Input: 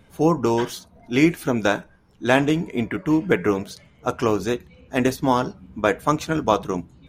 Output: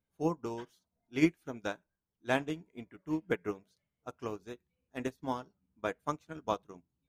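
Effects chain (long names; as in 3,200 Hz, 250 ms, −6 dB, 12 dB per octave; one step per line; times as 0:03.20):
expander for the loud parts 2.5 to 1, over −29 dBFS
level −8 dB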